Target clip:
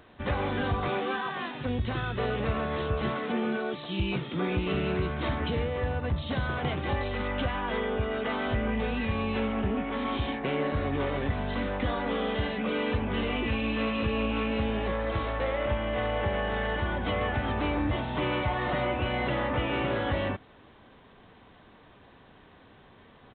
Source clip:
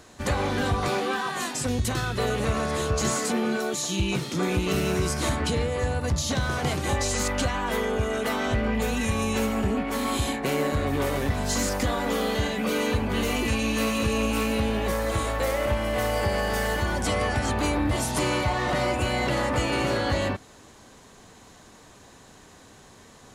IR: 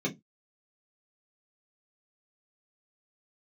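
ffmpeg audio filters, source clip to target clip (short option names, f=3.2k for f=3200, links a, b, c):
-af "aresample=8000,aresample=44100,volume=-3.5dB"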